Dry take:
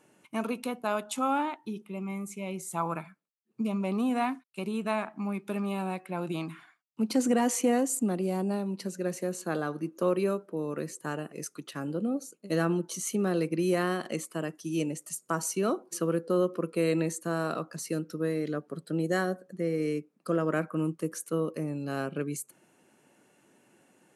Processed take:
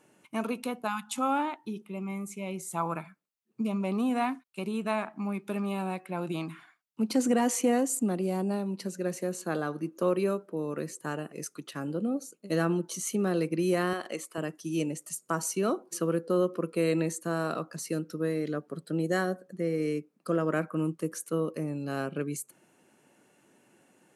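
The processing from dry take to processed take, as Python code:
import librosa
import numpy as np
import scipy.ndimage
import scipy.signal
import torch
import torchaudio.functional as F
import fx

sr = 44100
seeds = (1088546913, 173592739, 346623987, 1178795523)

y = fx.spec_erase(x, sr, start_s=0.88, length_s=0.3, low_hz=240.0, high_hz=700.0)
y = fx.bass_treble(y, sr, bass_db=-14, treble_db=-2, at=(13.93, 14.38))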